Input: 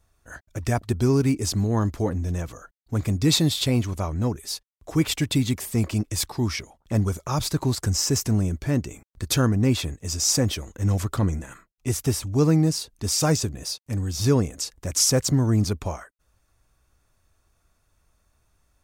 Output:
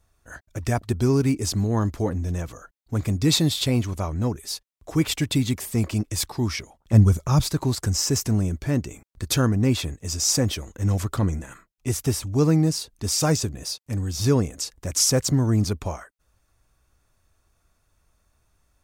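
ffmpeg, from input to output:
-filter_complex "[0:a]asettb=1/sr,asplit=3[a][b][c];[a]atrim=end=6.934[d];[b]atrim=start=6.93:end=7.41,asetpts=PTS-STARTPTS,afade=t=in:d=0.004:c=qsin,afade=t=out:st=0.476:d=0.004:c=qsin,bass=f=250:g=9,treble=f=4k:g=1[e];[c]atrim=start=7.406[f];[d][e]acrossfade=d=0.004:c1=hsin:c2=qsin[g];[g][f]acrossfade=d=0.004:c1=qsin:c2=hsin"

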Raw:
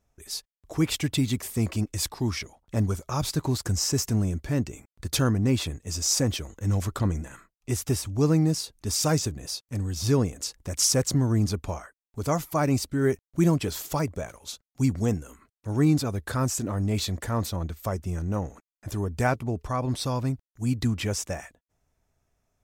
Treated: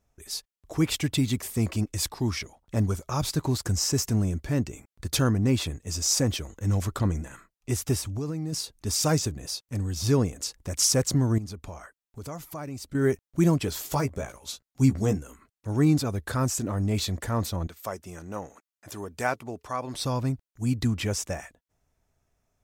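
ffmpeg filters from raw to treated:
-filter_complex "[0:a]asplit=3[a][b][c];[a]afade=t=out:st=8.04:d=0.02[d];[b]acompressor=threshold=-27dB:ratio=10:attack=3.2:release=140:knee=1:detection=peak,afade=t=in:st=8.04:d=0.02,afade=t=out:st=8.52:d=0.02[e];[c]afade=t=in:st=8.52:d=0.02[f];[d][e][f]amix=inputs=3:normalize=0,asettb=1/sr,asplit=3[g][h][i];[g]atrim=end=11.384[j];[h]atrim=start=11.38:end=12.95,asetpts=PTS-STARTPTS,afade=t=in:d=0.004:c=qsin,afade=t=out:st=1.566:d=0.004:c=qsin,acompressor=threshold=-39dB:ratio=2.5:attack=3.2:release=140:knee=1:detection=peak[k];[i]atrim=start=12.946[l];[j][k]acrossfade=d=0.004:c1=hsin:c2=qsin[m];[m][l]acrossfade=d=0.004:c1=qsin:c2=hsin,asettb=1/sr,asplit=3[n][o][p];[n]atrim=end=13.814[q];[o]atrim=start=13.81:end=15.18,asetpts=PTS-STARTPTS,afade=t=in:d=0.004:c=qsin,afade=t=out:st=1.366:d=0.004:c=qsin,asplit=2[r][s];[s]adelay=15,volume=-6dB[t];[r][t]amix=inputs=2:normalize=0,atrim=end_sample=60417[u];[p]atrim=start=15.176[v];[q][u]acrossfade=d=0.004:c1=hsin:c2=qsin[w];[w][v]acrossfade=d=0.004:c1=qsin:c2=hsin,asettb=1/sr,asplit=3[x][y][z];[x]atrim=end=17.674[aa];[y]atrim=start=17.67:end=19.95,asetpts=PTS-STARTPTS,afade=t=in:d=0.004:c=qsin,afade=t=out:st=2.276:d=0.004:c=qsin,highpass=f=540:p=1[ab];[z]atrim=start=19.946[ac];[aa][ab]acrossfade=d=0.004:c1=hsin:c2=qsin[ad];[ad][ac]acrossfade=d=0.004:c1=qsin:c2=hsin"

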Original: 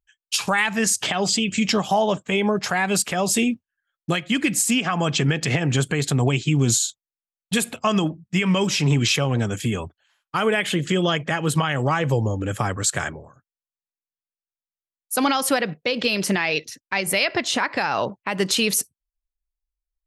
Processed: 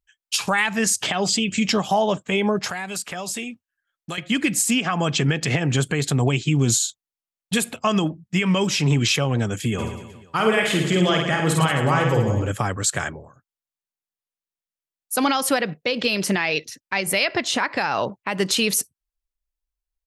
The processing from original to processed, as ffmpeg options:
-filter_complex "[0:a]asettb=1/sr,asplit=3[a][b][c];[a]atrim=end=2.684[d];[b]atrim=start=2.68:end=4.18,asetpts=PTS-STARTPTS,afade=t=in:d=0.004:c=qsin,afade=t=out:st=1.496:d=0.004:c=qsin,acrossover=split=730|2000|6300[e][f][g][h];[e]acompressor=threshold=-37dB:ratio=3[i];[f]acompressor=threshold=-36dB:ratio=3[j];[g]acompressor=threshold=-37dB:ratio=3[k];[h]acompressor=threshold=-33dB:ratio=3[l];[i][j][k][l]amix=inputs=4:normalize=0[m];[c]atrim=start=4.176[n];[d][m]acrossfade=d=0.004:c1=hsin:c2=qsin[o];[o][n]acrossfade=d=0.004:c1=qsin:c2=hsin,asplit=3[p][q][r];[p]afade=t=out:st=9.78:d=0.02[s];[q]aecho=1:1:50|110|182|268.4|372.1|496.5:0.631|0.398|0.251|0.158|0.1|0.0631,afade=t=in:st=9.78:d=0.02,afade=t=out:st=12.5:d=0.02[t];[r]afade=t=in:st=12.5:d=0.02[u];[s][t][u]amix=inputs=3:normalize=0"

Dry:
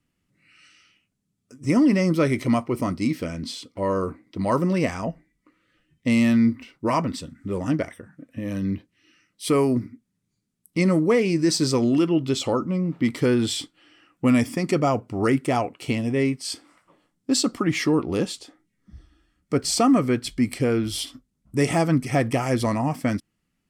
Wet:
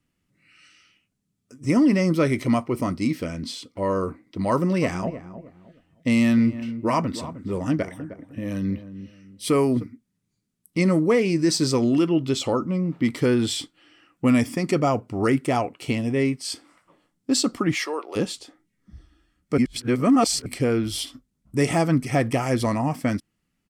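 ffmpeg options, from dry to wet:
-filter_complex "[0:a]asplit=3[a][b][c];[a]afade=t=out:st=4.81:d=0.02[d];[b]asplit=2[e][f];[f]adelay=309,lowpass=f=1k:p=1,volume=-12dB,asplit=2[g][h];[h]adelay=309,lowpass=f=1k:p=1,volume=0.31,asplit=2[i][j];[j]adelay=309,lowpass=f=1k:p=1,volume=0.31[k];[e][g][i][k]amix=inputs=4:normalize=0,afade=t=in:st=4.81:d=0.02,afade=t=out:st=9.82:d=0.02[l];[c]afade=t=in:st=9.82:d=0.02[m];[d][l][m]amix=inputs=3:normalize=0,asplit=3[n][o][p];[n]afade=t=out:st=17.74:d=0.02[q];[o]highpass=f=490:w=0.5412,highpass=f=490:w=1.3066,afade=t=in:st=17.74:d=0.02,afade=t=out:st=18.15:d=0.02[r];[p]afade=t=in:st=18.15:d=0.02[s];[q][r][s]amix=inputs=3:normalize=0,asplit=3[t][u][v];[t]atrim=end=19.582[w];[u]atrim=start=19.578:end=20.462,asetpts=PTS-STARTPTS,areverse[x];[v]atrim=start=20.458[y];[w][x]acrossfade=d=0.004:c1=hsin:c2=hsin[z];[z][y]acrossfade=d=0.004:c1=hsin:c2=hsin"

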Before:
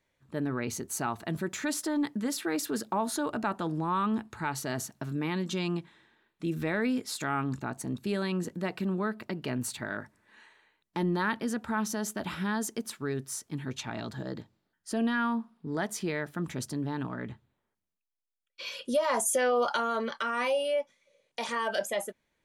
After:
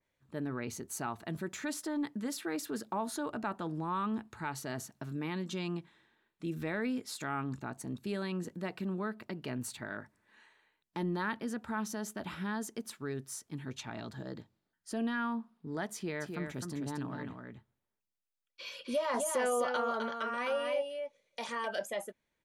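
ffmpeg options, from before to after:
-filter_complex "[0:a]asplit=3[a][b][c];[a]afade=t=out:st=16.2:d=0.02[d];[b]aecho=1:1:258:0.562,afade=t=in:st=16.2:d=0.02,afade=t=out:st=21.65:d=0.02[e];[c]afade=t=in:st=21.65:d=0.02[f];[d][e][f]amix=inputs=3:normalize=0,adynamicequalizer=threshold=0.00631:dfrequency=3300:dqfactor=0.7:tfrequency=3300:tqfactor=0.7:attack=5:release=100:ratio=0.375:range=2:mode=cutabove:tftype=highshelf,volume=-5.5dB"

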